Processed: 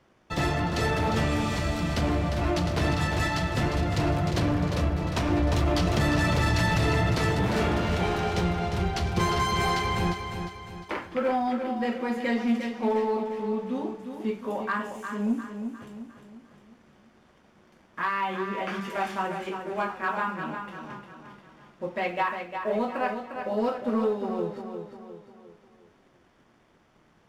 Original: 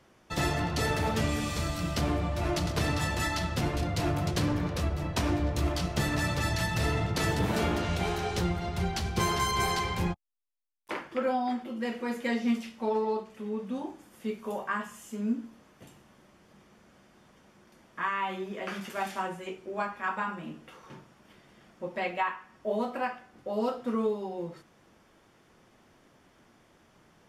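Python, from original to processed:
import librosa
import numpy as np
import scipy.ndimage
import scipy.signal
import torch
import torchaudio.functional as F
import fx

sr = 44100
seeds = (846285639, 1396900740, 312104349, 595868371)

p1 = fx.high_shelf(x, sr, hz=6400.0, db=-11.0)
p2 = fx.leveller(p1, sr, passes=1)
p3 = p2 + fx.echo_feedback(p2, sr, ms=353, feedback_pct=44, wet_db=-7.5, dry=0)
y = fx.env_flatten(p3, sr, amount_pct=70, at=(5.3, 7.15))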